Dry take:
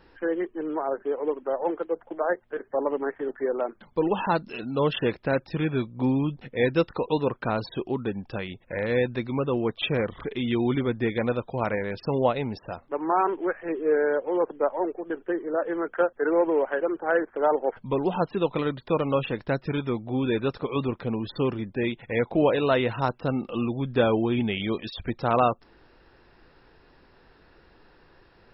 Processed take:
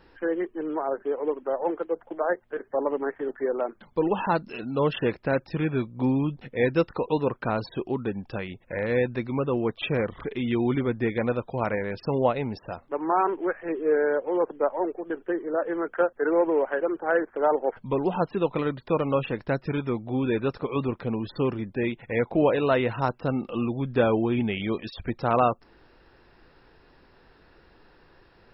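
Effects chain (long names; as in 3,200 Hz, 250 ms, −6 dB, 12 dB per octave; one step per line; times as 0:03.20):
dynamic equaliser 3,500 Hz, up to −6 dB, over −54 dBFS, Q 3.2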